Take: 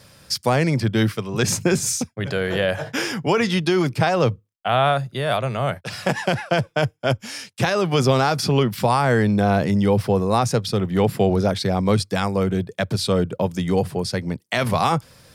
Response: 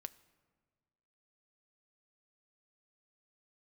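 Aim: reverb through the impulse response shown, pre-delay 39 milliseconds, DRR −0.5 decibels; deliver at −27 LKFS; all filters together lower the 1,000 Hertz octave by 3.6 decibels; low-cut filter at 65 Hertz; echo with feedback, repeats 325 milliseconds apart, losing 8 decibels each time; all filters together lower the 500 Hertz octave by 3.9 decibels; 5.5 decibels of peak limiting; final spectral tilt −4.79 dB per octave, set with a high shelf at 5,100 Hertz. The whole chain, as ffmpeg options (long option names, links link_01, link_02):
-filter_complex "[0:a]highpass=65,equalizer=frequency=500:width_type=o:gain=-4,equalizer=frequency=1000:width_type=o:gain=-3.5,highshelf=frequency=5100:gain=3,alimiter=limit=-12dB:level=0:latency=1,aecho=1:1:325|650|975|1300|1625:0.398|0.159|0.0637|0.0255|0.0102,asplit=2[link_01][link_02];[1:a]atrim=start_sample=2205,adelay=39[link_03];[link_02][link_03]afir=irnorm=-1:irlink=0,volume=5dB[link_04];[link_01][link_04]amix=inputs=2:normalize=0,volume=-7.5dB"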